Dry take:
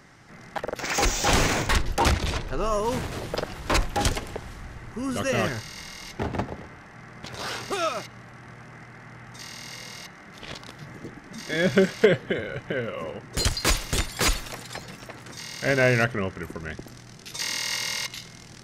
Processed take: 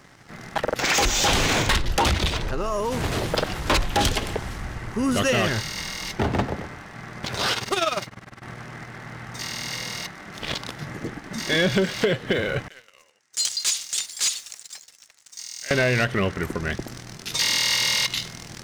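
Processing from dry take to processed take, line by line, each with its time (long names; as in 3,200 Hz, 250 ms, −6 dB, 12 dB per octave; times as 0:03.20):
0:02.27–0:03.04: downward compressor, threshold −29 dBFS
0:07.53–0:08.42: amplitude modulation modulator 20 Hz, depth 60%
0:12.68–0:15.71: resonant band-pass 7,100 Hz, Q 1.8
whole clip: dynamic equaliser 3,400 Hz, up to +6 dB, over −44 dBFS, Q 1.6; downward compressor, threshold −23 dBFS; leveller curve on the samples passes 2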